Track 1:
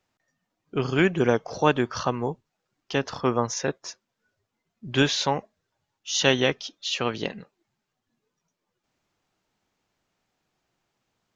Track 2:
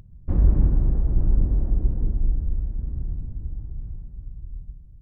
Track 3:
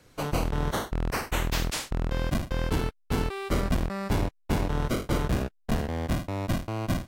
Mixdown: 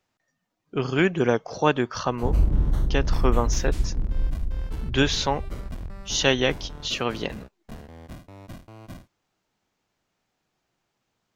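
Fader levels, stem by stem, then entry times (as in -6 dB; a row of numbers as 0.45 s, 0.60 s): 0.0 dB, -3.0 dB, -13.5 dB; 0.00 s, 1.95 s, 2.00 s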